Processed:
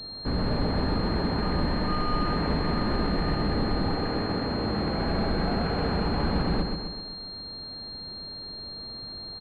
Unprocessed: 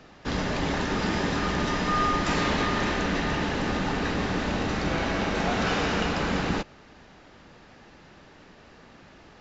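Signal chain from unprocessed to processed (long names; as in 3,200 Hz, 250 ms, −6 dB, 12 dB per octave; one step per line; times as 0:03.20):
0:03.93–0:05.02: high-pass filter 260 Hz → 100 Hz 6 dB per octave
soft clipping −26.5 dBFS, distortion −11 dB
spectral tilt −2 dB per octave
repeating echo 129 ms, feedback 56%, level −5 dB
switching amplifier with a slow clock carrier 4,200 Hz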